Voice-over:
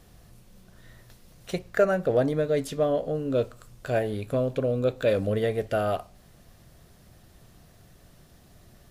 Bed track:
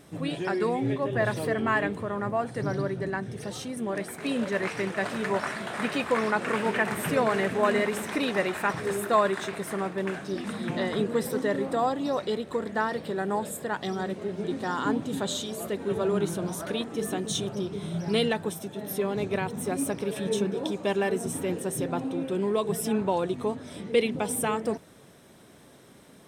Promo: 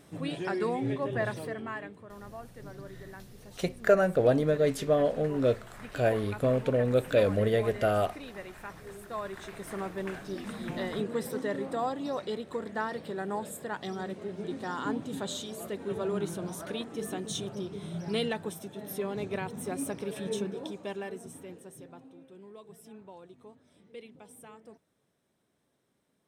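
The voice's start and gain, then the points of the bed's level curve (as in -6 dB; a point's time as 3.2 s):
2.10 s, -0.5 dB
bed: 1.14 s -3.5 dB
1.96 s -16.5 dB
9.06 s -16.5 dB
9.79 s -5.5 dB
20.34 s -5.5 dB
22.25 s -23 dB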